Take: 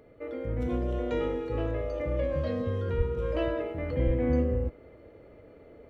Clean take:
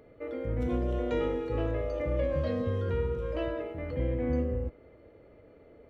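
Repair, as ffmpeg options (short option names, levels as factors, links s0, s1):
-filter_complex "[0:a]asplit=3[s0][s1][s2];[s0]afade=t=out:st=2.97:d=0.02[s3];[s1]highpass=f=140:w=0.5412,highpass=f=140:w=1.3066,afade=t=in:st=2.97:d=0.02,afade=t=out:st=3.09:d=0.02[s4];[s2]afade=t=in:st=3.09:d=0.02[s5];[s3][s4][s5]amix=inputs=3:normalize=0,asplit=3[s6][s7][s8];[s6]afade=t=out:st=4.05:d=0.02[s9];[s7]highpass=f=140:w=0.5412,highpass=f=140:w=1.3066,afade=t=in:st=4.05:d=0.02,afade=t=out:st=4.17:d=0.02[s10];[s8]afade=t=in:st=4.17:d=0.02[s11];[s9][s10][s11]amix=inputs=3:normalize=0,asetnsamples=n=441:p=0,asendcmd='3.17 volume volume -3.5dB',volume=1"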